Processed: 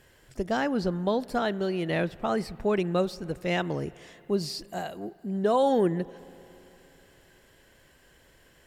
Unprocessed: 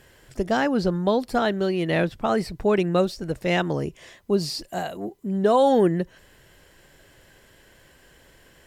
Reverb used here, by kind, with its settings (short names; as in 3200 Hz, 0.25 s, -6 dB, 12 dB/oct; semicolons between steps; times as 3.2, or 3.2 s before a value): spring tank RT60 3.4 s, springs 44/58 ms, chirp 45 ms, DRR 20 dB; gain -5 dB